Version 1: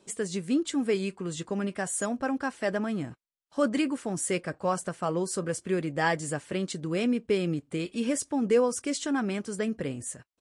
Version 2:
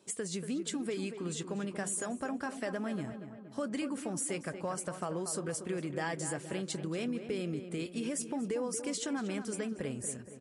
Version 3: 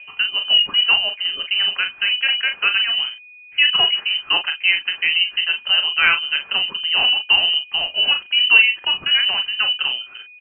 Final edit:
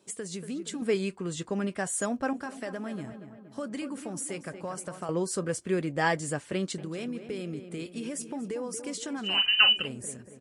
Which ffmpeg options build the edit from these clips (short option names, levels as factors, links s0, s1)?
-filter_complex "[0:a]asplit=2[s0][s1];[1:a]asplit=4[s2][s3][s4][s5];[s2]atrim=end=0.822[s6];[s0]atrim=start=0.818:end=2.332[s7];[s3]atrim=start=2.328:end=5.092[s8];[s1]atrim=start=5.088:end=6.782[s9];[s4]atrim=start=6.778:end=9.47[s10];[2:a]atrim=start=9.23:end=9.89[s11];[s5]atrim=start=9.65[s12];[s6][s7]acrossfade=d=0.004:c1=hsin:c2=hsin[s13];[s13][s8]acrossfade=d=0.004:c1=hsin:c2=hsin[s14];[s14][s9]acrossfade=d=0.004:c1=hsin:c2=hsin[s15];[s15][s10]acrossfade=d=0.004:c1=hsin:c2=hsin[s16];[s16][s11]acrossfade=d=0.24:c1=tri:c2=tri[s17];[s17][s12]acrossfade=d=0.24:c1=tri:c2=tri"